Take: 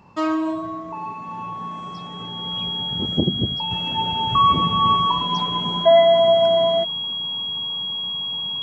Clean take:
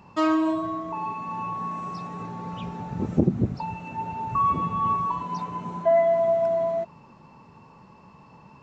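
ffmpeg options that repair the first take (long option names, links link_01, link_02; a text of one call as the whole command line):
ffmpeg -i in.wav -af "bandreject=frequency=3300:width=30,asetnsamples=nb_out_samples=441:pad=0,asendcmd='3.71 volume volume -6.5dB',volume=0dB" out.wav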